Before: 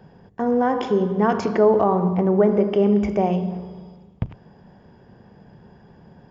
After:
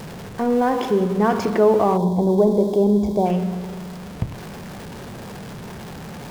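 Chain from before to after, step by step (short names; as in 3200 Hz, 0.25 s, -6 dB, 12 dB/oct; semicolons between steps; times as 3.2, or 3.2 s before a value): zero-crossing step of -30.5 dBFS; spectral gain 1.97–3.26, 1100–3200 Hz -17 dB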